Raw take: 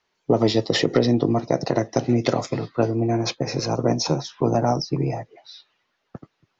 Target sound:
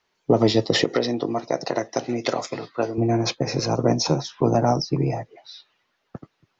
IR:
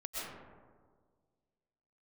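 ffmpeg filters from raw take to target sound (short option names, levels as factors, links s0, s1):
-filter_complex "[0:a]asettb=1/sr,asplit=3[s0][s1][s2];[s0]atrim=end=0.844[s3];[s1]atrim=start=0.84:end=2.98,asetpts=PTS-STARTPTS,afade=t=in:d=0.004:c=qsin,afade=t=out:st=2.136:d=0.004:c=qsin,highpass=f=560:p=1[s4];[s2]atrim=start=2.976[s5];[s3][s4]acrossfade=d=0.004:c1=hsin:c2=qsin[s6];[s6][s5]acrossfade=d=0.004:c1=qsin:c2=hsin,volume=1.12"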